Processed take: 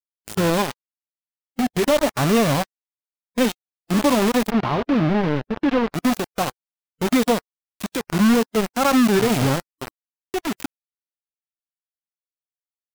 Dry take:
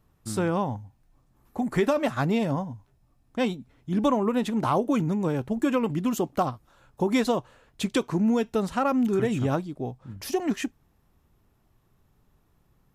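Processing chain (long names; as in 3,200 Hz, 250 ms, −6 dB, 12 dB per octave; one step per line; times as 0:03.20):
converter with a step at zero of −33 dBFS
0:01.97–0:03.39: dynamic equaliser 760 Hz, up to +5 dB, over −36 dBFS, Q 0.83
bit reduction 4 bits
0:04.50–0:05.93: high-frequency loss of the air 290 metres
harmonic and percussive parts rebalanced percussive −8 dB
level +5 dB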